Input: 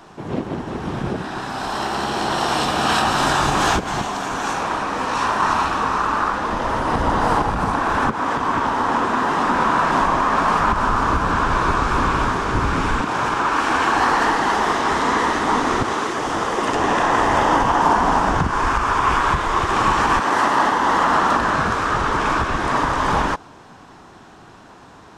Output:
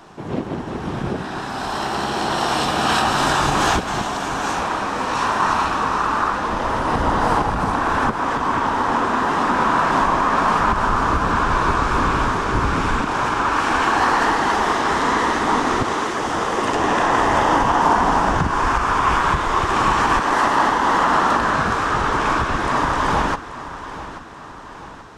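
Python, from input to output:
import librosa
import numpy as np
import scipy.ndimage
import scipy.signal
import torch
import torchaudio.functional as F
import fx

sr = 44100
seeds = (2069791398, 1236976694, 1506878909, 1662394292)

y = fx.echo_feedback(x, sr, ms=833, feedback_pct=51, wet_db=-14.5)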